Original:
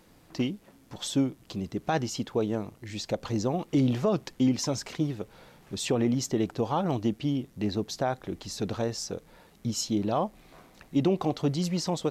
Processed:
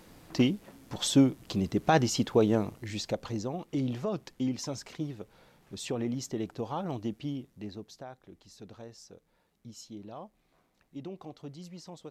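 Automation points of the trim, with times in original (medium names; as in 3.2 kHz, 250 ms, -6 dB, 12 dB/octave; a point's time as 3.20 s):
2.71 s +4 dB
3.48 s -7 dB
7.29 s -7 dB
8.10 s -17 dB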